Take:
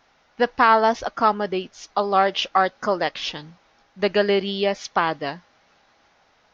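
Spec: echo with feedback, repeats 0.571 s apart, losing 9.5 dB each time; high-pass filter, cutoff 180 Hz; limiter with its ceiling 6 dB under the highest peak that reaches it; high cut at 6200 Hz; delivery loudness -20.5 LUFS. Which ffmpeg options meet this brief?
-af "highpass=180,lowpass=6.2k,alimiter=limit=-10dB:level=0:latency=1,aecho=1:1:571|1142|1713|2284:0.335|0.111|0.0365|0.012,volume=3.5dB"

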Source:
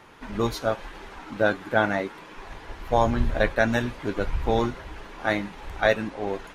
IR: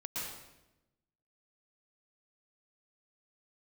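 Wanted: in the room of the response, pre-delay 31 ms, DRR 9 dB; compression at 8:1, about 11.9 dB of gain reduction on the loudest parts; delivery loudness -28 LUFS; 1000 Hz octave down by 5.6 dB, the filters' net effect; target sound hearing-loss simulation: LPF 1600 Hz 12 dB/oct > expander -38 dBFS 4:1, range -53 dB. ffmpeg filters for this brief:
-filter_complex "[0:a]equalizer=f=1k:t=o:g=-7.5,acompressor=threshold=-29dB:ratio=8,asplit=2[a][b];[1:a]atrim=start_sample=2205,adelay=31[c];[b][c]afir=irnorm=-1:irlink=0,volume=-11dB[d];[a][d]amix=inputs=2:normalize=0,lowpass=1.6k,agate=range=-53dB:threshold=-38dB:ratio=4,volume=8.5dB"

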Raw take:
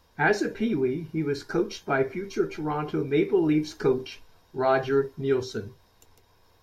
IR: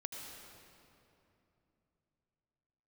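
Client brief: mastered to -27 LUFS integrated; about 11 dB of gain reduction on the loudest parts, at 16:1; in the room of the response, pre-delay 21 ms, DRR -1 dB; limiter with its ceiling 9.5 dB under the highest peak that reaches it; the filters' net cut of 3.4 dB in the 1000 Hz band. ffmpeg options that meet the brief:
-filter_complex "[0:a]equalizer=f=1k:t=o:g=-5,acompressor=threshold=-29dB:ratio=16,alimiter=level_in=5.5dB:limit=-24dB:level=0:latency=1,volume=-5.5dB,asplit=2[a][b];[1:a]atrim=start_sample=2205,adelay=21[c];[b][c]afir=irnorm=-1:irlink=0,volume=2dB[d];[a][d]amix=inputs=2:normalize=0,volume=8.5dB"

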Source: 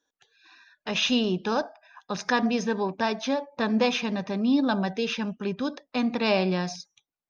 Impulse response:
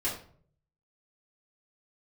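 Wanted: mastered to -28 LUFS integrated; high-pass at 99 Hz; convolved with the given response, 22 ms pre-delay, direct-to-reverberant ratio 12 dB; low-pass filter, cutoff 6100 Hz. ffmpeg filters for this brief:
-filter_complex "[0:a]highpass=99,lowpass=6.1k,asplit=2[a][b];[1:a]atrim=start_sample=2205,adelay=22[c];[b][c]afir=irnorm=-1:irlink=0,volume=-18.5dB[d];[a][d]amix=inputs=2:normalize=0,volume=-1.5dB"

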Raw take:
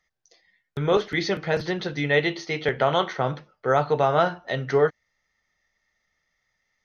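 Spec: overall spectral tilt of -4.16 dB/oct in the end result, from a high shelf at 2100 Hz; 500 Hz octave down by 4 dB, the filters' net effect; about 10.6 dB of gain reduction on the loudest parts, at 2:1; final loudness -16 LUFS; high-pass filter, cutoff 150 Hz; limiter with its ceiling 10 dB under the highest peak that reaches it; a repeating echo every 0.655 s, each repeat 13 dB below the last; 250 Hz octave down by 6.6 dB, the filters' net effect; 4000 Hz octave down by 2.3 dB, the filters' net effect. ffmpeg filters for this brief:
-af "highpass=150,equalizer=f=250:t=o:g=-8.5,equalizer=f=500:t=o:g=-3,highshelf=f=2.1k:g=6,equalizer=f=4k:t=o:g=-8.5,acompressor=threshold=-37dB:ratio=2,alimiter=level_in=4dB:limit=-24dB:level=0:latency=1,volume=-4dB,aecho=1:1:655|1310|1965:0.224|0.0493|0.0108,volume=23.5dB"

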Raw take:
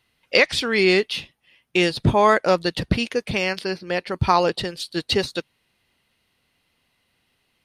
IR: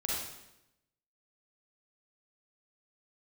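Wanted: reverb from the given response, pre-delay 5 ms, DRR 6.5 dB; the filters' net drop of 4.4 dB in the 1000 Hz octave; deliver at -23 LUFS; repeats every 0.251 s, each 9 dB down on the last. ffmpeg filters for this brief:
-filter_complex "[0:a]equalizer=f=1k:t=o:g=-5.5,aecho=1:1:251|502|753|1004:0.355|0.124|0.0435|0.0152,asplit=2[a][b];[1:a]atrim=start_sample=2205,adelay=5[c];[b][c]afir=irnorm=-1:irlink=0,volume=-11.5dB[d];[a][d]amix=inputs=2:normalize=0,volume=-2.5dB"

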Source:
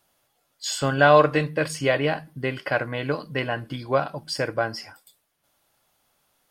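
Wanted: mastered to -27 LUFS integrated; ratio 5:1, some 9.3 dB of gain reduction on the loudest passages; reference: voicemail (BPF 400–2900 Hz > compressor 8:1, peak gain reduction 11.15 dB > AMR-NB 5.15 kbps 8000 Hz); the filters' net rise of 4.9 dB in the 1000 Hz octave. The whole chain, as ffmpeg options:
-af "equalizer=f=1k:t=o:g=6.5,acompressor=threshold=-17dB:ratio=5,highpass=400,lowpass=2.9k,acompressor=threshold=-27dB:ratio=8,volume=8.5dB" -ar 8000 -c:a libopencore_amrnb -b:a 5150

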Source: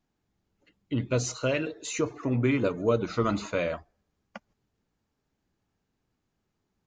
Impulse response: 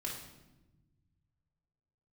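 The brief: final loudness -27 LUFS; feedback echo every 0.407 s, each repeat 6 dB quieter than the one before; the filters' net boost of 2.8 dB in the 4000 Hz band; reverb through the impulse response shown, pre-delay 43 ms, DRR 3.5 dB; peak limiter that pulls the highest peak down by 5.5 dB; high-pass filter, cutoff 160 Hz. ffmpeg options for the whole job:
-filter_complex "[0:a]highpass=160,equalizer=f=4k:t=o:g=3.5,alimiter=limit=-18dB:level=0:latency=1,aecho=1:1:407|814|1221|1628|2035|2442:0.501|0.251|0.125|0.0626|0.0313|0.0157,asplit=2[a][b];[1:a]atrim=start_sample=2205,adelay=43[c];[b][c]afir=irnorm=-1:irlink=0,volume=-4dB[d];[a][d]amix=inputs=2:normalize=0,volume=1dB"

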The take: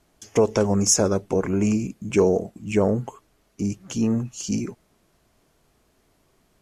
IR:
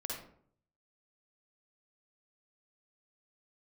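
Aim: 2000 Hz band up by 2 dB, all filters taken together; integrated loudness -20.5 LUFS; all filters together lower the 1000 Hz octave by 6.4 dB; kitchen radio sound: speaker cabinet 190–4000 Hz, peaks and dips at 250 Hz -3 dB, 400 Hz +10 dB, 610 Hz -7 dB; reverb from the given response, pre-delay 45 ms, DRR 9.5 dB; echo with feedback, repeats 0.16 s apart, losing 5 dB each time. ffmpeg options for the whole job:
-filter_complex "[0:a]equalizer=f=1k:t=o:g=-8.5,equalizer=f=2k:t=o:g=5,aecho=1:1:160|320|480|640|800|960|1120:0.562|0.315|0.176|0.0988|0.0553|0.031|0.0173,asplit=2[a][b];[1:a]atrim=start_sample=2205,adelay=45[c];[b][c]afir=irnorm=-1:irlink=0,volume=-10dB[d];[a][d]amix=inputs=2:normalize=0,highpass=190,equalizer=f=250:t=q:w=4:g=-3,equalizer=f=400:t=q:w=4:g=10,equalizer=f=610:t=q:w=4:g=-7,lowpass=f=4k:w=0.5412,lowpass=f=4k:w=1.3066,volume=-0.5dB"

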